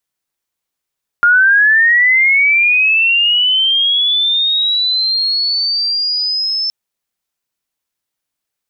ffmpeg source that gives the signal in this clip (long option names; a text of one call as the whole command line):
ffmpeg -f lavfi -i "aevalsrc='pow(10,(-6-8.5*t/5.47)/20)*sin(2*PI*(1400*t+3900*t*t/(2*5.47)))':duration=5.47:sample_rate=44100" out.wav